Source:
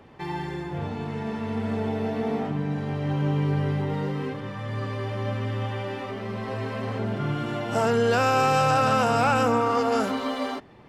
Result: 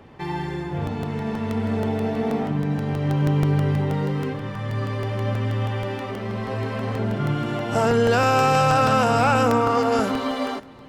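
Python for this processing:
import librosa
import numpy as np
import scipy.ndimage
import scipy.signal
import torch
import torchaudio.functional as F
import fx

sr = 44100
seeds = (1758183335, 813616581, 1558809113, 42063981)

p1 = fx.low_shelf(x, sr, hz=200.0, db=3.0)
p2 = p1 + fx.echo_single(p1, sr, ms=546, db=-22.5, dry=0)
p3 = fx.buffer_crackle(p2, sr, first_s=0.87, period_s=0.16, block=64, kind='repeat')
y = p3 * librosa.db_to_amplitude(2.5)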